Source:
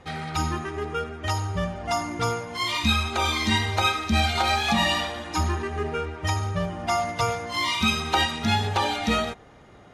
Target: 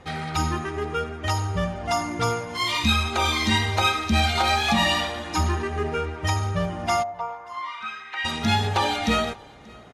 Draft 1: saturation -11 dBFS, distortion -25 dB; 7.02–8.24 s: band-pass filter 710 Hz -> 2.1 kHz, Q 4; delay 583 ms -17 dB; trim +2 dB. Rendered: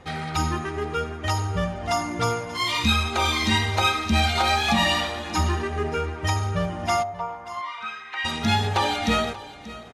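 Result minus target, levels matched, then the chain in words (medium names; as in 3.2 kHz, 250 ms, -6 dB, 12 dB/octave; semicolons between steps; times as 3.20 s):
echo-to-direct +9 dB
saturation -11 dBFS, distortion -25 dB; 7.02–8.24 s: band-pass filter 710 Hz -> 2.1 kHz, Q 4; delay 583 ms -26 dB; trim +2 dB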